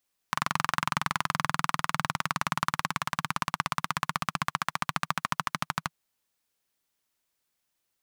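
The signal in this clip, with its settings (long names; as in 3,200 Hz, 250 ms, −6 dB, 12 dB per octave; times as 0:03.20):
pulse-train model of a single-cylinder engine, changing speed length 5.58 s, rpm 2,700, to 1,500, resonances 160/1,100 Hz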